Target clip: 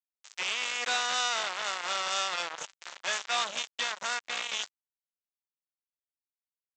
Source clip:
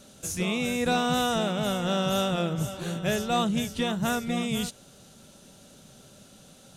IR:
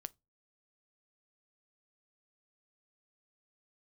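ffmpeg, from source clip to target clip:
-af "aresample=16000,acrusher=bits=3:mix=0:aa=0.5,aresample=44100,highpass=1100" -ar 32000 -c:a sbc -b:a 192k

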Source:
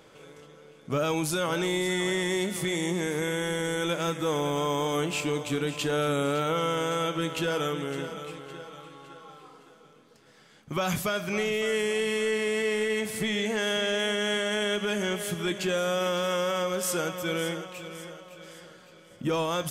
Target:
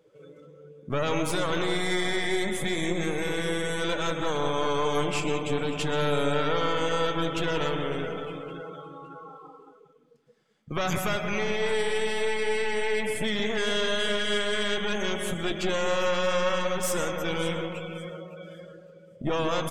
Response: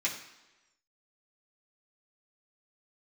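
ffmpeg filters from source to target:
-filter_complex "[0:a]aeval=exprs='clip(val(0),-1,0.0106)':c=same,asplit=2[s0][s1];[s1]adelay=183,lowpass=f=2300:p=1,volume=0.501,asplit=2[s2][s3];[s3]adelay=183,lowpass=f=2300:p=1,volume=0.5,asplit=2[s4][s5];[s5]adelay=183,lowpass=f=2300:p=1,volume=0.5,asplit=2[s6][s7];[s7]adelay=183,lowpass=f=2300:p=1,volume=0.5,asplit=2[s8][s9];[s9]adelay=183,lowpass=f=2300:p=1,volume=0.5,asplit=2[s10][s11];[s11]adelay=183,lowpass=f=2300:p=1,volume=0.5[s12];[s0][s2][s4][s6][s8][s10][s12]amix=inputs=7:normalize=0,asplit=2[s13][s14];[1:a]atrim=start_sample=2205,adelay=118[s15];[s14][s15]afir=irnorm=-1:irlink=0,volume=0.168[s16];[s13][s16]amix=inputs=2:normalize=0,afftdn=nr=20:nf=-44,volume=1.41"

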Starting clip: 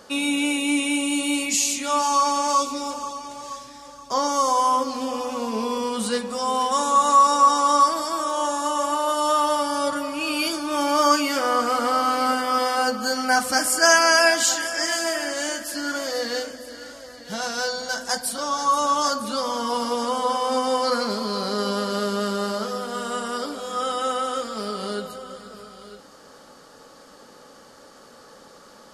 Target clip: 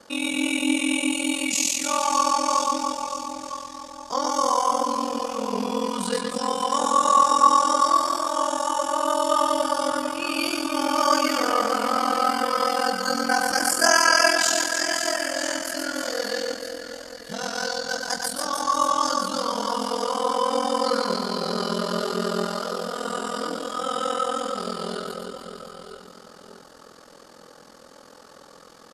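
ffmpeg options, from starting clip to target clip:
-af "aecho=1:1:120|300|570|975|1582:0.631|0.398|0.251|0.158|0.1,aeval=exprs='val(0)*sin(2*PI*21*n/s)':c=same"

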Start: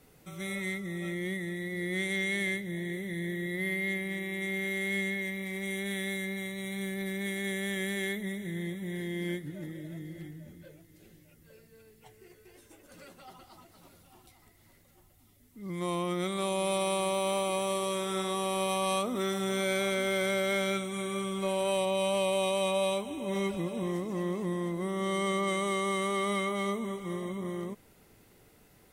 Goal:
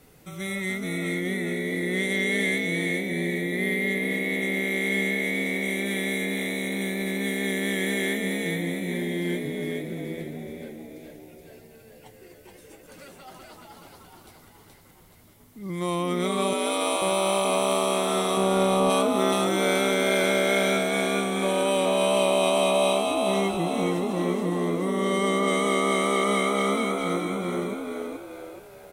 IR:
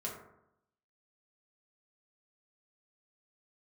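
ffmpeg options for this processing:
-filter_complex "[0:a]asettb=1/sr,asplit=3[s0][s1][s2];[s0]atrim=end=16.534[s3];[s1]atrim=start=16.53:end=17.02,asetpts=PTS-STARTPTS,afade=t=in:d=0.004:c=qsin,afade=t=out:st=0.486:d=0.004:c=qsin,highpass=690[s4];[s2]atrim=start=17.016[s5];[s3][s4]acrossfade=d=0.004:c1=hsin:c2=qsin[s6];[s6][s5]acrossfade=d=0.004:c1=qsin:c2=hsin,asettb=1/sr,asplit=3[s7][s8][s9];[s7]atrim=end=18.374[s10];[s8]atrim=start=18.37:end=18.9,asetpts=PTS-STARTPTS,afade=t=in:d=0.004:c=qsin,afade=t=out:st=0.526:d=0.004:c=qsin,tiltshelf=f=970:g=7[s11];[s9]atrim=start=18.896[s12];[s10][s11]acrossfade=d=0.004:c1=hsin:c2=qsin[s13];[s13][s12]acrossfade=d=0.004:c1=qsin:c2=hsin,asplit=7[s14][s15][s16][s17][s18][s19][s20];[s15]adelay=425,afreqshift=73,volume=0.708[s21];[s16]adelay=850,afreqshift=146,volume=0.305[s22];[s17]adelay=1275,afreqshift=219,volume=0.13[s23];[s18]adelay=1700,afreqshift=292,volume=0.0562[s24];[s19]adelay=2125,afreqshift=365,volume=0.0243[s25];[s20]adelay=2550,afreqshift=438,volume=0.0104[s26];[s14][s21][s22][s23][s24][s25][s26]amix=inputs=7:normalize=0,volume=1.78"

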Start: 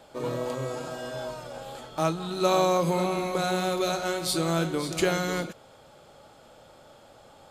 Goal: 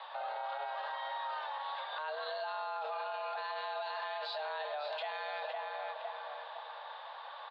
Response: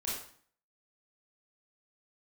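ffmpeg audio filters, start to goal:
-filter_complex "[0:a]aexciter=amount=1.2:drive=4:freq=3000,highpass=f=240:t=q:w=0.5412,highpass=f=240:t=q:w=1.307,lowpass=f=3600:t=q:w=0.5176,lowpass=f=3600:t=q:w=0.7071,lowpass=f=3600:t=q:w=1.932,afreqshift=300,asplit=2[s0][s1];[s1]adelay=509,lowpass=f=1900:p=1,volume=0.178,asplit=2[s2][s3];[s3]adelay=509,lowpass=f=1900:p=1,volume=0.43,asplit=2[s4][s5];[s5]adelay=509,lowpass=f=1900:p=1,volume=0.43,asplit=2[s6][s7];[s7]adelay=509,lowpass=f=1900:p=1,volume=0.43[s8];[s2][s4][s6][s8]amix=inputs=4:normalize=0[s9];[s0][s9]amix=inputs=2:normalize=0,alimiter=level_in=4.73:limit=0.0631:level=0:latency=1:release=105,volume=0.211,volume=2"

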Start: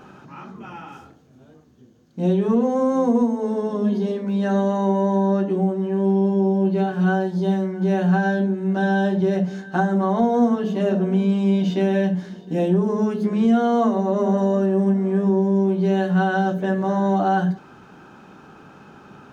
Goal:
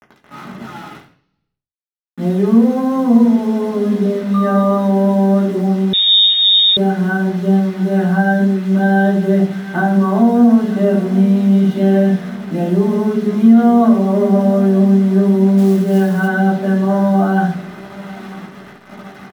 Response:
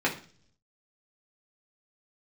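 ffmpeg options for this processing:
-filter_complex "[0:a]aecho=1:1:943|1886|2829|3772|4715:0.1|0.057|0.0325|0.0185|0.0106,asettb=1/sr,asplit=3[s0][s1][s2];[s0]atrim=end=4.344[s3];[s1]atrim=start=4.34:end=4.78,asetpts=PTS-STARTPTS,afade=t=in:d=0.004:c=qsin,afade=t=out:st=0.436:d=0.004:c=qsin,aeval=exprs='val(0)+0.0501*sin(2*PI*1200*n/s)':c=same[s4];[s2]atrim=start=4.776[s5];[s3][s4]acrossfade=d=0.004:c1=hsin:c2=qsin[s6];[s6][s5]acrossfade=d=0.004:c1=qsin:c2=hsin,acrusher=bits=5:mix=0:aa=0.000001[s7];[1:a]atrim=start_sample=2205,asetrate=35280,aresample=44100[s8];[s7][s8]afir=irnorm=-1:irlink=0,asettb=1/sr,asplit=3[s9][s10][s11];[s9]atrim=end=5.934[s12];[s10]atrim=start=5.93:end=6.77,asetpts=PTS-STARTPTS,afade=t=in:d=0.004:c=qsin,afade=t=out:st=0.836:d=0.004:c=qsin,lowpass=f=3300:t=q:w=0.5098,lowpass=f=3300:t=q:w=0.6013,lowpass=f=3300:t=q:w=0.9,lowpass=f=3300:t=q:w=2.563,afreqshift=-3900[s13];[s11]atrim=start=6.766[s14];[s12][s13]acrossfade=d=0.004:c1=hsin:c2=qsin[s15];[s15][s14]acrossfade=d=0.004:c1=qsin:c2=hsin,asplit=3[s16][s17][s18];[s16]afade=t=out:st=15.57:d=0.02[s19];[s17]acrusher=bits=7:mode=log:mix=0:aa=0.000001,afade=t=in:st=15.57:d=0.02,afade=t=out:st=16.27:d=0.02[s20];[s18]afade=t=in:st=16.27:d=0.02[s21];[s19][s20][s21]amix=inputs=3:normalize=0,alimiter=level_in=0.376:limit=0.891:release=50:level=0:latency=1,volume=0.891"

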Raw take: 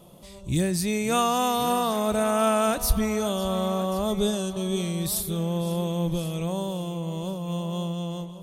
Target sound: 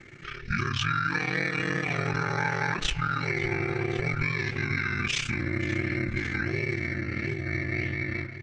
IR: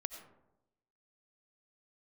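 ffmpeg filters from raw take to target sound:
-af "lowpass=4000,highshelf=f=1500:t=q:w=3:g=10.5,aecho=1:1:3.7:0.65,acompressor=threshold=0.0631:ratio=12,aeval=exprs='val(0)*sin(2*PI*28*n/s)':c=same,asetrate=28595,aresample=44100,atempo=1.54221,flanger=delay=5.1:depth=9.9:regen=-86:speed=1.5:shape=sinusoidal,volume=2.51"

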